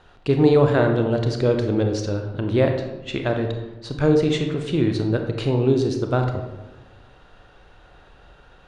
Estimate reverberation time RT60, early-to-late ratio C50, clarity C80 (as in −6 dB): 1.1 s, 6.0 dB, 8.5 dB